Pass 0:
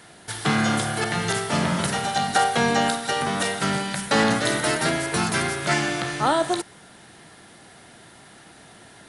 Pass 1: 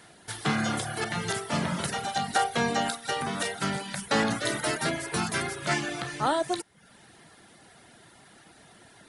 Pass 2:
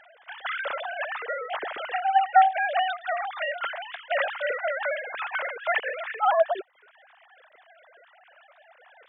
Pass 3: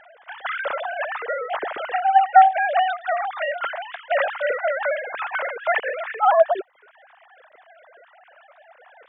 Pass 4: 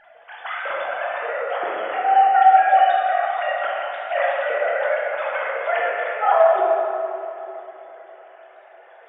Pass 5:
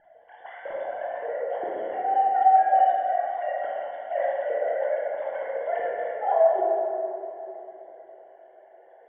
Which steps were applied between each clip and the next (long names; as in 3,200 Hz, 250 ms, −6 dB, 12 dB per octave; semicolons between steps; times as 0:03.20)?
reverb reduction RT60 0.64 s; level −4.5 dB
three sine waves on the formant tracks; level +2.5 dB
high-shelf EQ 2,600 Hz −11.5 dB; level +6.5 dB
feedback echo with a low-pass in the loop 325 ms, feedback 79%, low-pass 2,000 Hz, level −22 dB; rectangular room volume 140 cubic metres, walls hard, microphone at 0.71 metres; level −4.5 dB
moving average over 35 samples; on a send: flutter between parallel walls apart 9.2 metres, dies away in 0.3 s